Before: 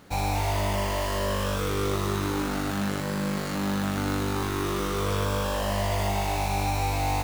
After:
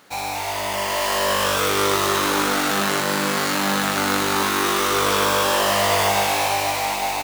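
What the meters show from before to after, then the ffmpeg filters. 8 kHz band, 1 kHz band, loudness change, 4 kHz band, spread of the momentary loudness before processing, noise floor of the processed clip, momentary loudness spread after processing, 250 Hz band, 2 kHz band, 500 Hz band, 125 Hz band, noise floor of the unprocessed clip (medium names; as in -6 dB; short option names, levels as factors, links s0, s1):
+12.5 dB, +9.0 dB, +8.0 dB, +12.5 dB, 2 LU, -27 dBFS, 5 LU, +2.5 dB, +11.5 dB, +7.0 dB, -5.5 dB, -30 dBFS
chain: -af "dynaudnorm=f=220:g=9:m=2.51,highpass=f=850:p=1,aecho=1:1:846:0.422,volume=1.78"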